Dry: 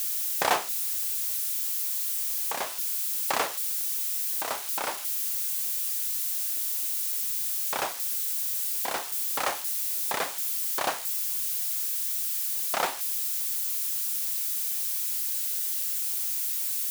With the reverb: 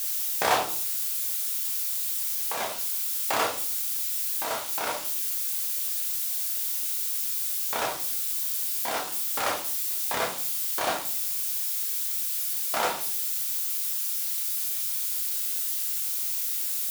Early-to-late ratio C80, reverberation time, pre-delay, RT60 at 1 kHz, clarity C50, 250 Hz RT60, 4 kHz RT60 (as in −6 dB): 15.5 dB, 0.50 s, 13 ms, 0.40 s, 9.0 dB, 0.80 s, 0.40 s